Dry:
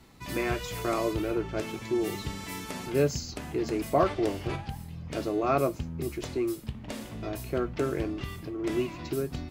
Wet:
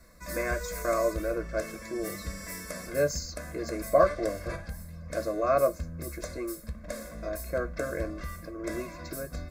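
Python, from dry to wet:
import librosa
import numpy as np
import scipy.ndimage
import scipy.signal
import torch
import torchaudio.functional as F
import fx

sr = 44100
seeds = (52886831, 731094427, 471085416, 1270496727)

y = fx.fixed_phaser(x, sr, hz=600.0, stages=8)
y = y + 0.74 * np.pad(y, (int(1.9 * sr / 1000.0), 0))[:len(y)]
y = y * 10.0 ** (2.0 / 20.0)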